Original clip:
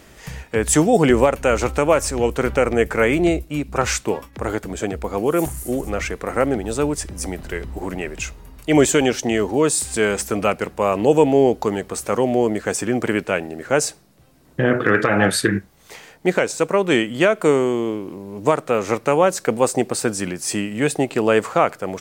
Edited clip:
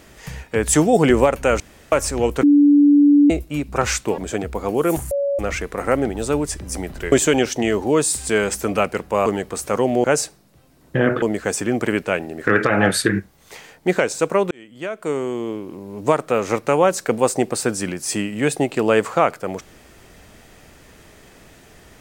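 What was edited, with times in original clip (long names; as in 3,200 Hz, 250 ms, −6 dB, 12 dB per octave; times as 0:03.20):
0:01.60–0:01.92: fill with room tone
0:02.43–0:03.30: beep over 289 Hz −8.5 dBFS
0:04.18–0:04.67: remove
0:05.60–0:05.88: beep over 563 Hz −17.5 dBFS
0:07.61–0:08.79: remove
0:10.93–0:11.65: remove
0:13.68–0:14.86: move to 0:12.43
0:16.90–0:18.34: fade in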